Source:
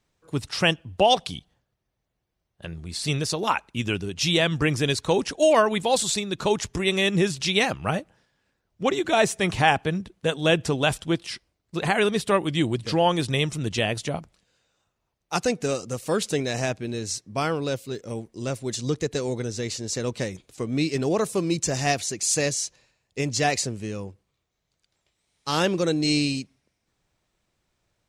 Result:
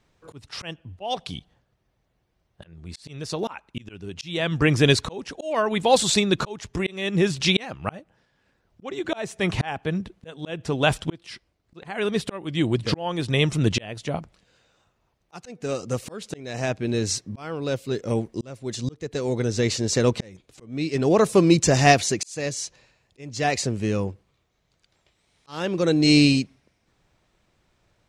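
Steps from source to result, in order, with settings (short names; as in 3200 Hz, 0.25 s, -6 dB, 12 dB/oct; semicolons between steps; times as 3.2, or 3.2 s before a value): auto swell 0.786 s; high shelf 6200 Hz -10 dB; gain +8.5 dB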